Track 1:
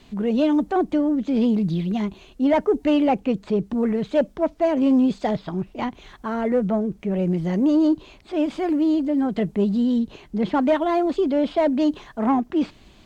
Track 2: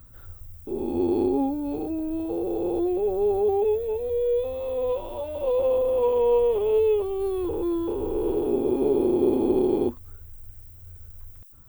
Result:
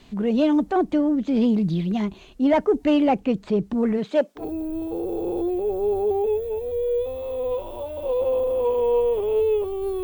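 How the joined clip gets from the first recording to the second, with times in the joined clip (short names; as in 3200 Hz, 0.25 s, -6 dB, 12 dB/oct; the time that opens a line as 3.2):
track 1
3.97–4.45 HPF 150 Hz -> 740 Hz
4.4 switch to track 2 from 1.78 s, crossfade 0.10 s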